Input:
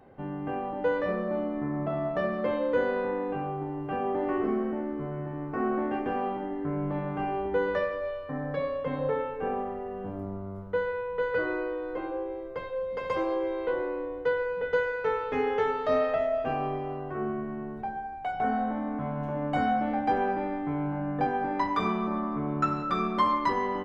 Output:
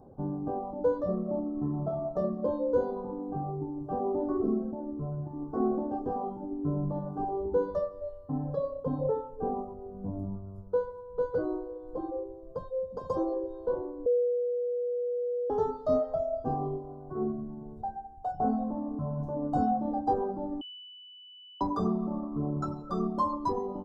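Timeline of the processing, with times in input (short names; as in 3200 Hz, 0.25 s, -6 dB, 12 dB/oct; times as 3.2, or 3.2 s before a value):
14.06–15.5 bleep 487 Hz -21.5 dBFS
20.61–21.61 bleep 2980 Hz -15.5 dBFS
whole clip: Chebyshev band-stop 940–5400 Hz, order 2; reverb removal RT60 1.9 s; low shelf 450 Hz +9 dB; gain -2.5 dB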